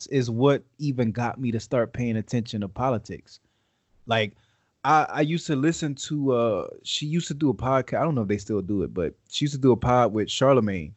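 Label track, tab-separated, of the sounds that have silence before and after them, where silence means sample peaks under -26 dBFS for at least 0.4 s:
4.090000	4.260000	sound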